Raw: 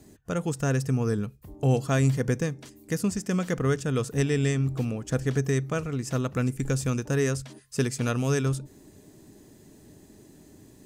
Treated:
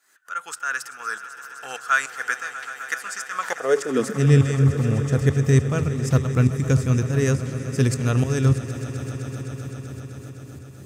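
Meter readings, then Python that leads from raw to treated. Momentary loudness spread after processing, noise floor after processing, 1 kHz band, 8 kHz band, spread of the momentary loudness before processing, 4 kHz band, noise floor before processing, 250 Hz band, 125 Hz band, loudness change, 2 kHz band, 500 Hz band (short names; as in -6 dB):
16 LU, -42 dBFS, +7.5 dB, +3.0 dB, 7 LU, +3.0 dB, -54 dBFS, +3.0 dB, +6.5 dB, +5.0 dB, +9.0 dB, +3.0 dB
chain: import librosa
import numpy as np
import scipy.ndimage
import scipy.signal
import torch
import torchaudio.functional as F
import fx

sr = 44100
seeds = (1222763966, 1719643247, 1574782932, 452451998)

y = fx.tremolo_shape(x, sr, shape='saw_up', hz=3.4, depth_pct=85)
y = fx.filter_sweep_highpass(y, sr, from_hz=1400.0, to_hz=88.0, start_s=3.29, end_s=4.49, q=5.6)
y = fx.echo_swell(y, sr, ms=128, loudest=5, wet_db=-16.5)
y = y * librosa.db_to_amplitude(6.0)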